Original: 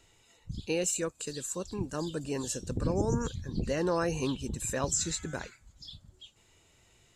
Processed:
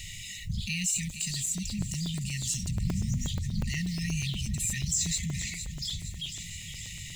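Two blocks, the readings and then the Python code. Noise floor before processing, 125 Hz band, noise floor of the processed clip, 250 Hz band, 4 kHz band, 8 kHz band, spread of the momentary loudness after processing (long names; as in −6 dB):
−65 dBFS, +5.5 dB, −42 dBFS, −0.5 dB, +7.5 dB, +4.5 dB, 9 LU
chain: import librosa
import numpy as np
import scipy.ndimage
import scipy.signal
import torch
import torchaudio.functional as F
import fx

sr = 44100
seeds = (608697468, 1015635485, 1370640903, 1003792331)

p1 = fx.law_mismatch(x, sr, coded='mu')
p2 = fx.brickwall_bandstop(p1, sr, low_hz=220.0, high_hz=1800.0)
p3 = p2 + fx.echo_feedback(p2, sr, ms=466, feedback_pct=59, wet_db=-18.0, dry=0)
p4 = fx.buffer_crackle(p3, sr, first_s=0.98, period_s=0.12, block=128, kind='zero')
y = fx.env_flatten(p4, sr, amount_pct=50)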